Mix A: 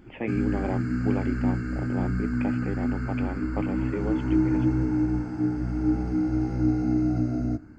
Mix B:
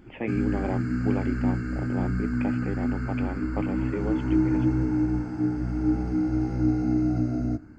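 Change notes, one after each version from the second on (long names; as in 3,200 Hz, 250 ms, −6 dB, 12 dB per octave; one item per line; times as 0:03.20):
nothing changed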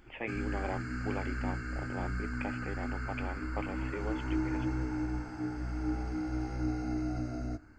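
master: add parametric band 190 Hz −14 dB 2.6 octaves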